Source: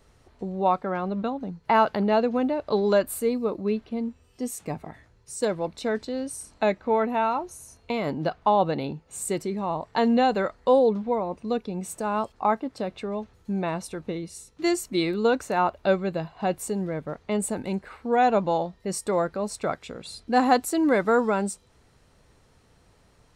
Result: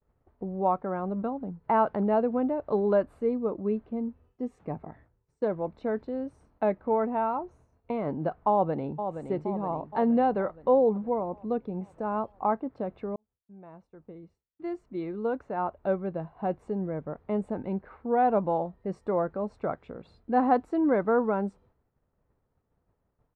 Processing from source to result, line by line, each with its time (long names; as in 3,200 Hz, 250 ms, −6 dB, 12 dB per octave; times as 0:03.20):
0:08.51–0:09.08: delay throw 470 ms, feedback 60%, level −8 dB
0:13.16–0:16.86: fade in
whole clip: low-pass filter 1,200 Hz 12 dB per octave; downward expander −50 dBFS; level −2.5 dB